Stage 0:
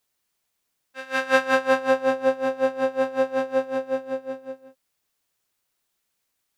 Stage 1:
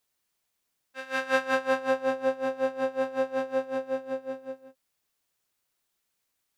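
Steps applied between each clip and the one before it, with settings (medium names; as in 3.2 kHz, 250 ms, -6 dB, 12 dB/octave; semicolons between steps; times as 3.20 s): in parallel at -2 dB: compression, threshold -28 dBFS, peak gain reduction 15 dB; on the sum: endings held to a fixed fall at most 460 dB/s; trim -7.5 dB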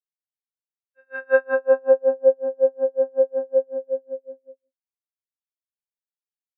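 spectral contrast expander 2.5:1; trim +4.5 dB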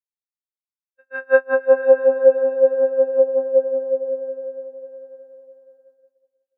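echo that smears into a reverb 523 ms, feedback 43%, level -10 dB; expander -50 dBFS; trim +3 dB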